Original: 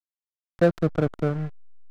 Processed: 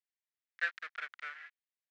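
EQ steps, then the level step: resonant high-pass 1800 Hz, resonance Q 3.5; LPF 2700 Hz 12 dB/oct; differentiator; +6.5 dB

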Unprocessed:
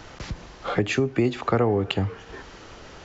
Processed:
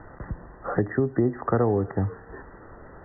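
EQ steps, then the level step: brick-wall FIR low-pass 2000 Hz; air absorption 380 m; 0.0 dB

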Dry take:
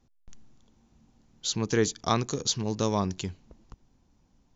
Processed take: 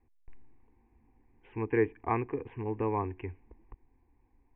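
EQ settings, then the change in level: steep low-pass 2500 Hz 72 dB/oct; fixed phaser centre 900 Hz, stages 8; 0.0 dB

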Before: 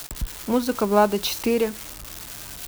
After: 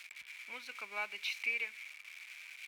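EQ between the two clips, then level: band-pass 2300 Hz, Q 13; tilt +2 dB/oct; +4.5 dB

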